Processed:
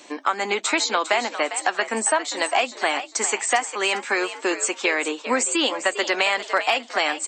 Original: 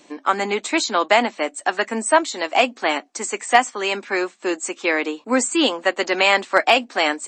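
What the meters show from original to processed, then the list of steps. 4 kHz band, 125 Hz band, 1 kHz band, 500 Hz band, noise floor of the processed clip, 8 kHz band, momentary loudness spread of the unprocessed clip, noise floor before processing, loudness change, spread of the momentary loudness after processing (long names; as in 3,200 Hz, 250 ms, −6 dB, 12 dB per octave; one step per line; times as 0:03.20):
−1.5 dB, can't be measured, −3.5 dB, −4.0 dB, −44 dBFS, +2.5 dB, 8 LU, −53 dBFS, −2.5 dB, 3 LU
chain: high-pass filter 530 Hz 6 dB per octave
downward compressor 4 to 1, threshold −26 dBFS, peak gain reduction 14 dB
on a send: echo with shifted repeats 402 ms, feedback 32%, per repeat +69 Hz, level −11.5 dB
on the sum: level +6.5 dB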